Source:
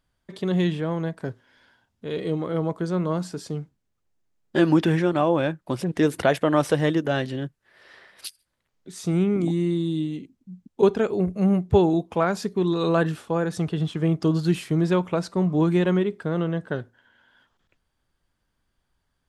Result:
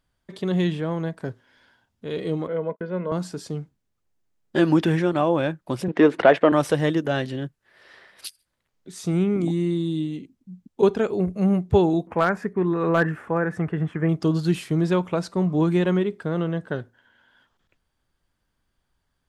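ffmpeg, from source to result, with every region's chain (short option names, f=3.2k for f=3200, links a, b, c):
-filter_complex "[0:a]asettb=1/sr,asplit=3[a][b][c];[a]atrim=end=2.474[d];[b]atrim=start=2.47:end=3.12,asetpts=PTS-STARTPTS,afade=t=in:d=0.004:c=qsin,afade=t=out:st=0.646:d=0.004:c=qsin,highpass=f=200:w=0.5412,highpass=f=200:w=1.3066,equalizer=f=220:t=q:w=4:g=10,equalizer=f=330:t=q:w=4:g=-8,equalizer=f=820:t=q:w=4:g=-5,equalizer=f=1.2k:t=q:w=4:g=-7,lowpass=f=2.6k:w=0.5412,lowpass=f=2.6k:w=1.3066,agate=range=-42dB:threshold=-39dB:ratio=16:release=100:detection=peak,aecho=1:1:2:0.48,atrim=end_sample=28665[e];[c]atrim=start=3.116[f];[d][e]acrossfade=d=0.004:c1=hsin:c2=qsin[g];[g][f]acrossfade=d=0.004:c1=qsin:c2=hsin,asettb=1/sr,asplit=3[h][i][j];[h]atrim=end=5.884[k];[i]atrim=start=5.88:end=6.52,asetpts=PTS-STARTPTS,afade=t=in:d=0.004:c=qsin,afade=t=out:st=0.636:d=0.004:c=qsin,acontrast=81,highpass=270,lowpass=2.5k[l];[j]atrim=start=6.516[m];[k][l]acrossfade=d=0.004:c1=hsin:c2=qsin[n];[n][m]acrossfade=d=0.004:c1=qsin:c2=hsin,asettb=1/sr,asplit=3[o][p][q];[o]atrim=end=12.074[r];[p]atrim=start=12.07:end=14.09,asetpts=PTS-STARTPTS,afade=t=in:d=0.004:c=qsin,afade=t=out:st=2.016:d=0.004:c=qsin,highshelf=f=2.7k:t=q:w=3:g=-13,acompressor=mode=upward:threshold=-35dB:ratio=2.5:attack=3.2:release=140:knee=2.83:detection=peak,asoftclip=type=hard:threshold=-10.5dB[s];[q]atrim=start=14.086[t];[r][s]acrossfade=d=0.004:c1=hsin:c2=qsin[u];[u][t]acrossfade=d=0.004:c1=qsin:c2=hsin"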